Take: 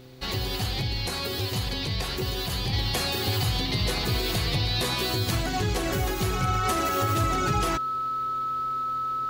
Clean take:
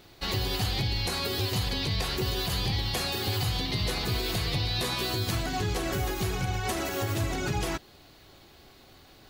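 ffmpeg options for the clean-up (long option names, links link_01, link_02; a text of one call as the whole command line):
ffmpeg -i in.wav -af "bandreject=frequency=128.3:width_type=h:width=4,bandreject=frequency=256.6:width_type=h:width=4,bandreject=frequency=384.9:width_type=h:width=4,bandreject=frequency=513.2:width_type=h:width=4,bandreject=frequency=1300:width=30,asetnsamples=nb_out_samples=441:pad=0,asendcmd='2.73 volume volume -3dB',volume=0dB" out.wav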